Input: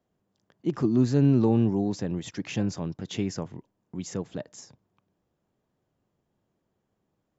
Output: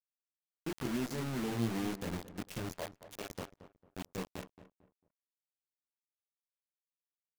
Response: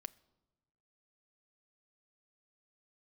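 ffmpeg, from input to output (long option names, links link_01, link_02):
-filter_complex "[0:a]alimiter=limit=-18.5dB:level=0:latency=1:release=176,flanger=delay=19:depth=7.7:speed=0.84,aeval=exprs='0.112*(cos(1*acos(clip(val(0)/0.112,-1,1)))-cos(1*PI/2))+0.0126*(cos(3*acos(clip(val(0)/0.112,-1,1)))-cos(3*PI/2))+0.002*(cos(8*acos(clip(val(0)/0.112,-1,1)))-cos(8*PI/2))':channel_layout=same,aeval=exprs='val(0)+0.00158*(sin(2*PI*60*n/s)+sin(2*PI*2*60*n/s)/2+sin(2*PI*3*60*n/s)/3+sin(2*PI*4*60*n/s)/4+sin(2*PI*5*60*n/s)/5)':channel_layout=same,asplit=3[link_01][link_02][link_03];[link_01]afade=type=out:start_time=2.76:duration=0.02[link_04];[link_02]highpass=frequency=580:width_type=q:width=3.5,afade=type=in:start_time=2.76:duration=0.02,afade=type=out:start_time=3.29:duration=0.02[link_05];[link_03]afade=type=in:start_time=3.29:duration=0.02[link_06];[link_04][link_05][link_06]amix=inputs=3:normalize=0,acrusher=bits=5:mix=0:aa=0.000001,asplit=2[link_07][link_08];[link_08]adelay=224,lowpass=frequency=1500:poles=1,volume=-13dB,asplit=2[link_09][link_10];[link_10]adelay=224,lowpass=frequency=1500:poles=1,volume=0.31,asplit=2[link_11][link_12];[link_12]adelay=224,lowpass=frequency=1500:poles=1,volume=0.31[link_13];[link_07][link_09][link_11][link_13]amix=inputs=4:normalize=0,volume=-4dB"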